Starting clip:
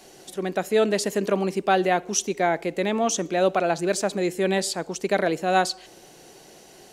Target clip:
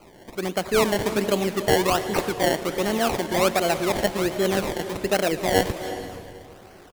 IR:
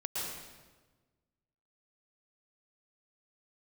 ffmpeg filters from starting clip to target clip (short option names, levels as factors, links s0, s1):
-filter_complex "[0:a]asplit=2[s0][s1];[s1]adelay=275,lowpass=f=2000:p=1,volume=0.1,asplit=2[s2][s3];[s3]adelay=275,lowpass=f=2000:p=1,volume=0.49,asplit=2[s4][s5];[s5]adelay=275,lowpass=f=2000:p=1,volume=0.49,asplit=2[s6][s7];[s7]adelay=275,lowpass=f=2000:p=1,volume=0.49[s8];[s0][s2][s4][s6][s8]amix=inputs=5:normalize=0,acrusher=samples=24:mix=1:aa=0.000001:lfo=1:lforange=24:lforate=1.3,asplit=2[s9][s10];[1:a]atrim=start_sample=2205,asetrate=29106,aresample=44100,adelay=113[s11];[s10][s11]afir=irnorm=-1:irlink=0,volume=0.141[s12];[s9][s12]amix=inputs=2:normalize=0"